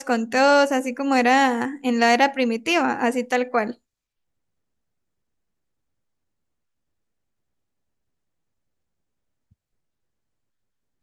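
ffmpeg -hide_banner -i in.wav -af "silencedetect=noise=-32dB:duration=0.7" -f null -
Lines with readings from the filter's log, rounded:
silence_start: 3.72
silence_end: 11.03 | silence_duration: 7.31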